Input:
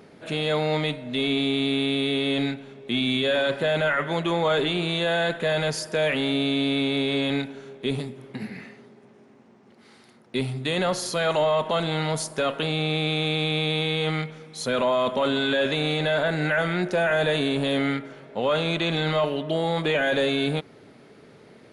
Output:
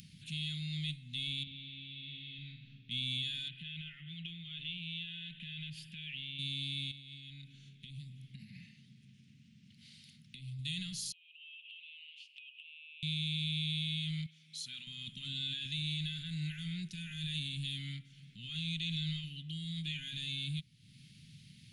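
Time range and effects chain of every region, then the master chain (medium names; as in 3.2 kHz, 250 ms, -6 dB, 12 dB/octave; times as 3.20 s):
1.43–2.91 s: compression 2.5:1, threshold -28 dBFS + distance through air 260 m + flutter echo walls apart 7 m, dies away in 0.56 s
3.48–6.39 s: resonant high shelf 4.2 kHz -12.5 dB, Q 3 + compression 2:1, threshold -31 dBFS
6.91–10.59 s: treble shelf 6 kHz -9.5 dB + hum notches 60/120/180/240/300/360/420/480 Hz + compression 5:1, threshold -34 dBFS
11.12–13.03 s: Butterworth band-pass 2.7 kHz, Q 5.8 + compression 12:1, threshold -51 dBFS
14.26–14.87 s: high-pass 660 Hz 6 dB/octave + treble shelf 7.8 kHz -10 dB
whole clip: upward compressor, threshold -29 dBFS; Chebyshev band-stop 160–2900 Hz, order 3; trim -8 dB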